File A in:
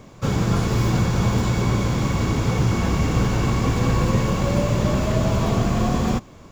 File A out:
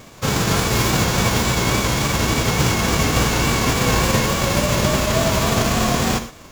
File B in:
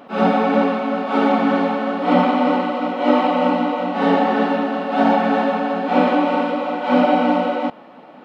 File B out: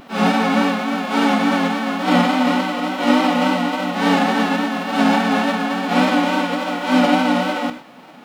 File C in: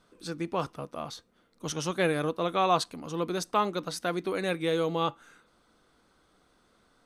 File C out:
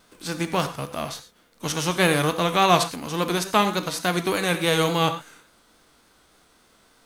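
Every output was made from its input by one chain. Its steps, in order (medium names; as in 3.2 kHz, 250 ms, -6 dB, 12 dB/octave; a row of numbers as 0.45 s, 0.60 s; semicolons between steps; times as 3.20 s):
formants flattened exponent 0.6; gated-style reverb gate 140 ms flat, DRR 9 dB; vibrato 3.5 Hz 46 cents; peak normalisation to -3 dBFS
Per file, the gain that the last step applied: +1.5 dB, -0.5 dB, +6.5 dB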